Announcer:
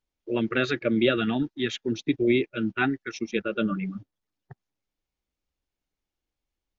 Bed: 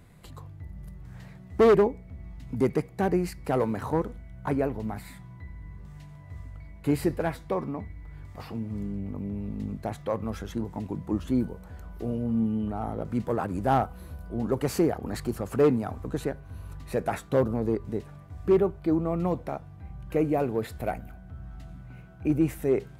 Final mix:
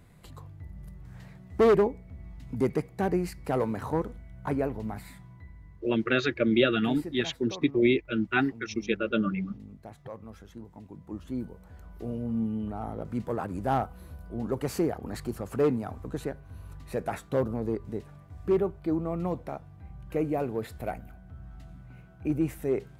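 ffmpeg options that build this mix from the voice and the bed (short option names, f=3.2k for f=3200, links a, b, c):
-filter_complex "[0:a]adelay=5550,volume=-0.5dB[a];[1:a]volume=7.5dB,afade=t=out:st=5.02:d=0.99:silence=0.281838,afade=t=in:st=10.9:d=1.3:silence=0.334965[b];[a][b]amix=inputs=2:normalize=0"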